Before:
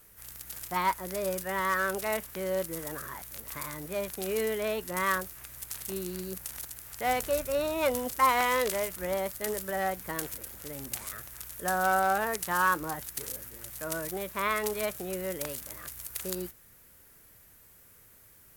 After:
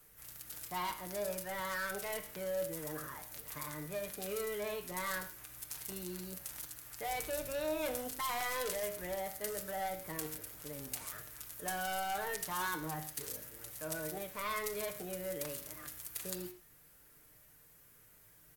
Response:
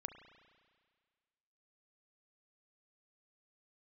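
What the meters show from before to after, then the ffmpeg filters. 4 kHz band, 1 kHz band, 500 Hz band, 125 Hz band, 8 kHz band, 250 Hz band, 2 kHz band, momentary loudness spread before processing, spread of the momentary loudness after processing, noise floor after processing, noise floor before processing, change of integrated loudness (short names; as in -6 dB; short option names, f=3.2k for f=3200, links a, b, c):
-5.0 dB, -10.5 dB, -8.0 dB, -6.0 dB, -5.0 dB, -8.0 dB, -9.5 dB, 13 LU, 12 LU, -62 dBFS, -57 dBFS, -8.0 dB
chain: -filter_complex "[0:a]aecho=1:1:6.6:0.48,acrossover=split=110|3300[a][b][c];[b]asoftclip=type=tanh:threshold=-29.5dB[d];[a][d][c]amix=inputs=3:normalize=0[e];[1:a]atrim=start_sample=2205,afade=t=out:st=0.31:d=0.01,atrim=end_sample=14112,asetrate=74970,aresample=44100[f];[e][f]afir=irnorm=-1:irlink=0,volume=3dB"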